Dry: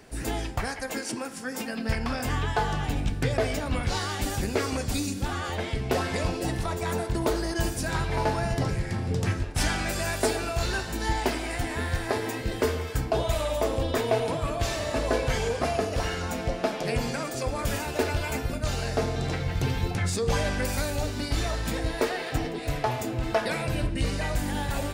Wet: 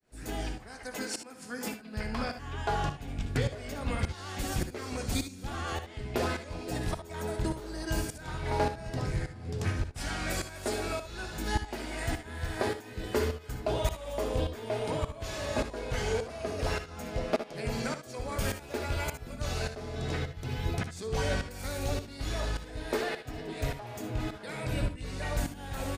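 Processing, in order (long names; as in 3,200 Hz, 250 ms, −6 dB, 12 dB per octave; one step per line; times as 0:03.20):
shaped tremolo saw up 1.8 Hz, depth 100%
ambience of single reflections 59 ms −11.5 dB, 72 ms −13 dB
wrong playback speed 25 fps video run at 24 fps
level −1.5 dB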